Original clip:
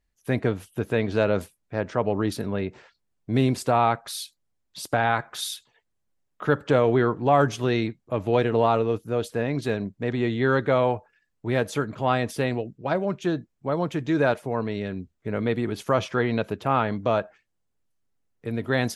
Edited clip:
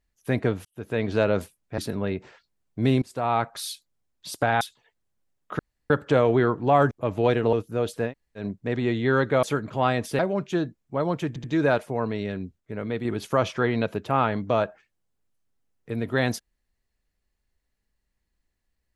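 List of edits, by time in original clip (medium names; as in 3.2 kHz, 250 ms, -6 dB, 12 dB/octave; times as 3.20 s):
0.65–1.08 s: fade in
1.78–2.29 s: delete
3.53–3.98 s: fade in, from -22 dB
5.12–5.51 s: delete
6.49 s: insert room tone 0.31 s
7.50–8.00 s: delete
8.62–8.89 s: delete
9.45–9.76 s: room tone, crossfade 0.10 s
10.79–11.68 s: delete
12.44–12.91 s: delete
14.00 s: stutter 0.08 s, 3 plays
15.16–15.61 s: gain -4.5 dB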